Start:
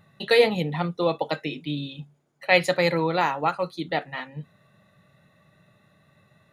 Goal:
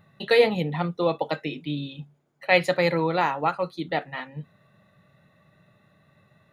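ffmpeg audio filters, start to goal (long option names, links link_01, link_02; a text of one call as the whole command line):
ffmpeg -i in.wav -af "equalizer=frequency=8500:width_type=o:width=1.9:gain=-5.5" out.wav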